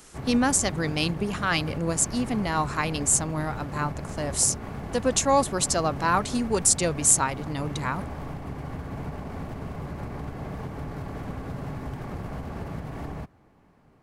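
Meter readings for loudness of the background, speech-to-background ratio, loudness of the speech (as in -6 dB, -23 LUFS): -36.0 LUFS, 11.5 dB, -24.5 LUFS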